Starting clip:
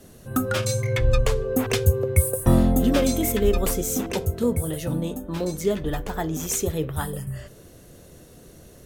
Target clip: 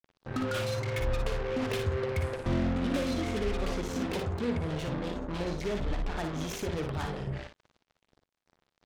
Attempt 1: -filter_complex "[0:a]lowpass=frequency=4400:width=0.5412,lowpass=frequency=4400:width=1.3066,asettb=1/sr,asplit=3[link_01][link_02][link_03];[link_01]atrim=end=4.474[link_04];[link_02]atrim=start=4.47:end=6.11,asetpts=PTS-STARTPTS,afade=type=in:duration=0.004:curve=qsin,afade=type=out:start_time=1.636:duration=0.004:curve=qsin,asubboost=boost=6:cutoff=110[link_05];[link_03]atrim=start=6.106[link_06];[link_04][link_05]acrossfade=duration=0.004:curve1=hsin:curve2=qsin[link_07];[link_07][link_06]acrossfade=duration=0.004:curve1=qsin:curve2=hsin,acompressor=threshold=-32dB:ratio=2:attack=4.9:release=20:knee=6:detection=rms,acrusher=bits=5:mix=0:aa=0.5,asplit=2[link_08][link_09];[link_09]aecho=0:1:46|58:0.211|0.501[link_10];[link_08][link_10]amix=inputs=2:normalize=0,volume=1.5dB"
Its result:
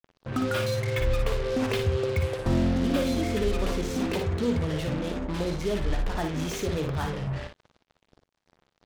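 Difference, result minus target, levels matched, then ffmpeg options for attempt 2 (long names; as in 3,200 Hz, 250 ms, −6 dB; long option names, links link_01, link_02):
downward compressor: peak gain reduction −5 dB
-filter_complex "[0:a]lowpass=frequency=4400:width=0.5412,lowpass=frequency=4400:width=1.3066,asettb=1/sr,asplit=3[link_01][link_02][link_03];[link_01]atrim=end=4.474[link_04];[link_02]atrim=start=4.47:end=6.11,asetpts=PTS-STARTPTS,afade=type=in:duration=0.004:curve=qsin,afade=type=out:start_time=1.636:duration=0.004:curve=qsin,asubboost=boost=6:cutoff=110[link_05];[link_03]atrim=start=6.106[link_06];[link_04][link_05]acrossfade=duration=0.004:curve1=hsin:curve2=qsin[link_07];[link_07][link_06]acrossfade=duration=0.004:curve1=qsin:curve2=hsin,acompressor=threshold=-42dB:ratio=2:attack=4.9:release=20:knee=6:detection=rms,acrusher=bits=5:mix=0:aa=0.5,asplit=2[link_08][link_09];[link_09]aecho=0:1:46|58:0.211|0.501[link_10];[link_08][link_10]amix=inputs=2:normalize=0,volume=1.5dB"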